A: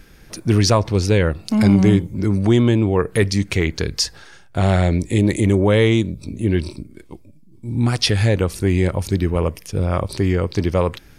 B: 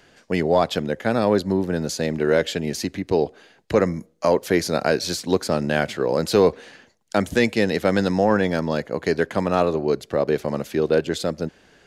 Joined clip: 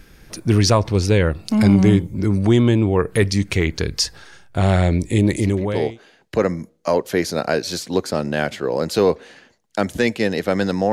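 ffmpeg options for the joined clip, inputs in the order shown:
-filter_complex "[0:a]apad=whole_dur=10.92,atrim=end=10.92,atrim=end=5.99,asetpts=PTS-STARTPTS[a];[1:a]atrim=start=2.64:end=8.29,asetpts=PTS-STARTPTS[b];[a][b]acrossfade=d=0.72:c1=tri:c2=tri"

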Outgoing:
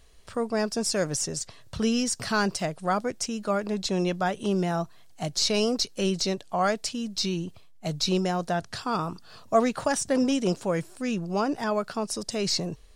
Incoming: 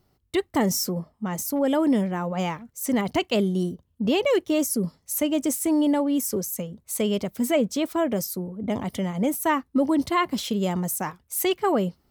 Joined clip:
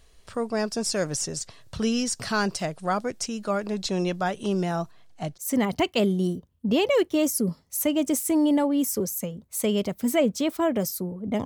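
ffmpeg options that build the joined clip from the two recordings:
-filter_complex "[0:a]asettb=1/sr,asplit=3[a][b][c];[a]atrim=end=4.914[d];[b]atrim=start=4.91:end=5.38,asetpts=PTS-STARTPTS,afade=t=in:d=0.004:c=qsin,afade=t=out:st=0.466:d=0.004:c=qsin,lowpass=f=3.2k:p=1[e];[c]atrim=start=5.376[f];[d][e]acrossfade=d=0.004:c1=hsin:c2=qsin[g];[g][f]acrossfade=d=0.004:c1=qsin:c2=hsin,apad=whole_dur=11.45,atrim=end=11.45,atrim=end=5.38,asetpts=PTS-STARTPTS[h];[1:a]atrim=start=2.68:end=8.81,asetpts=PTS-STARTPTS[i];[h][i]acrossfade=d=0.06:c1=tri:c2=tri"

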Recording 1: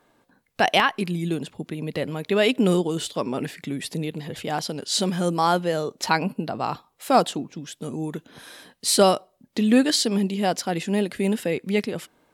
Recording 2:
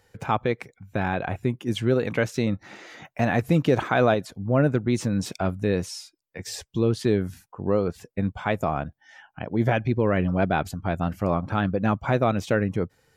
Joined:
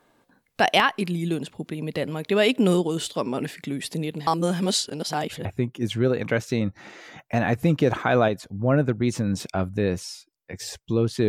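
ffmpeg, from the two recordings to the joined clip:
-filter_complex "[0:a]apad=whole_dur=11.28,atrim=end=11.28,asplit=2[a][b];[a]atrim=end=4.272[c];[b]atrim=start=4.268:end=5.452,asetpts=PTS-STARTPTS,areverse[d];[1:a]atrim=start=1.308:end=7.14[e];[c][d]acrossfade=d=0.004:c1=hsin:c2=hsin[f];[f][e]acrossfade=d=0.004:c1=hsin:c2=hsin"

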